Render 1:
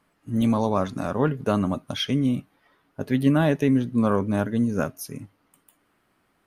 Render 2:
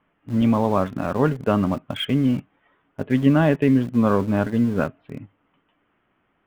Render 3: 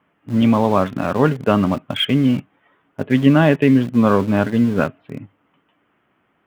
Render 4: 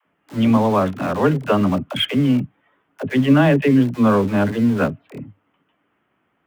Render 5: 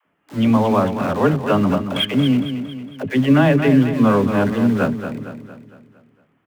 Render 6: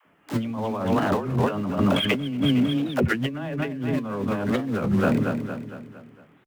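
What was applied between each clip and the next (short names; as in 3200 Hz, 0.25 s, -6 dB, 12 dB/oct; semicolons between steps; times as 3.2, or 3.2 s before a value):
steep low-pass 3300 Hz 72 dB/oct; in parallel at -8 dB: sample gate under -29 dBFS
HPF 82 Hz; dynamic EQ 3000 Hz, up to +4 dB, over -42 dBFS, Q 0.86; gain +4 dB
in parallel at -9 dB: sample gate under -25 dBFS; on the sum: dispersion lows, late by 66 ms, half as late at 330 Hz; gain -3.5 dB
feedback echo 0.229 s, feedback 49%, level -9 dB
negative-ratio compressor -25 dBFS, ratio -1; record warp 33 1/3 rpm, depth 250 cents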